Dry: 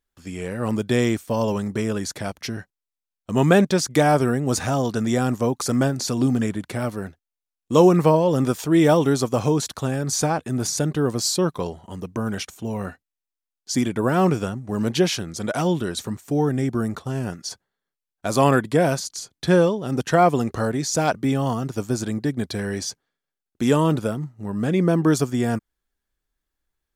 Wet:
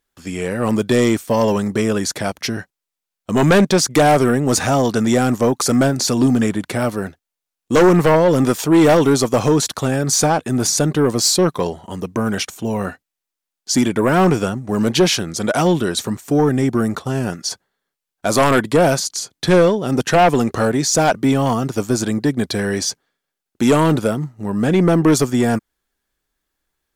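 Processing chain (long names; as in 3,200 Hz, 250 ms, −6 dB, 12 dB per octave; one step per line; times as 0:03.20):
low-shelf EQ 100 Hz −9.5 dB
in parallel at −7 dB: sine wavefolder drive 11 dB, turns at −2.5 dBFS
on the sum: level −2.5 dB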